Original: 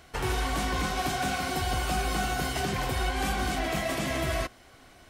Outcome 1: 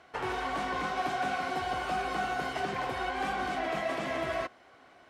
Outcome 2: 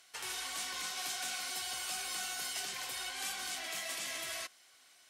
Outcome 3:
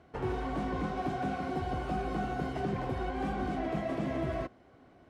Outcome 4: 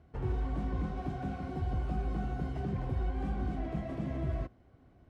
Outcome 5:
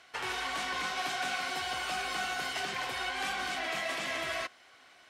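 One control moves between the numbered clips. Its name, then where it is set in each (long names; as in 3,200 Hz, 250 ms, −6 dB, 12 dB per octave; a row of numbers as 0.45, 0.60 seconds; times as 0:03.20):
resonant band-pass, frequency: 880, 8,000, 270, 100, 2,400 Hertz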